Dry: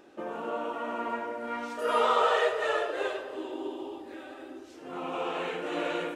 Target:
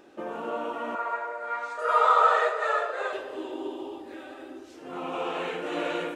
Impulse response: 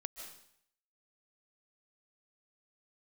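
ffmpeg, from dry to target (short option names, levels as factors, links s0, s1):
-filter_complex "[0:a]asettb=1/sr,asplit=3[s0][s1][s2];[s0]atrim=end=0.954[s3];[s1]atrim=start=0.95:end=3.13,asetpts=PTS-STARTPTS,afade=t=in:d=0.004:c=qsin,afade=t=out:st=2.176:d=0.004:c=qsin,highpass=f=480:w=0.5412,highpass=f=480:w=1.3066,equalizer=f=1300:t=q:w=4:g=7,equalizer=f=3000:t=q:w=4:g=-10,equalizer=f=5500:t=q:w=4:g=-7,lowpass=f=8300:w=0.5412,lowpass=f=8300:w=1.3066[s4];[s2]atrim=start=3.126[s5];[s3][s4]acrossfade=d=0.004:c1=hsin:c2=qsin[s6];[s6][s5]acrossfade=d=0.004:c1=qsin:c2=hsin,volume=1.19"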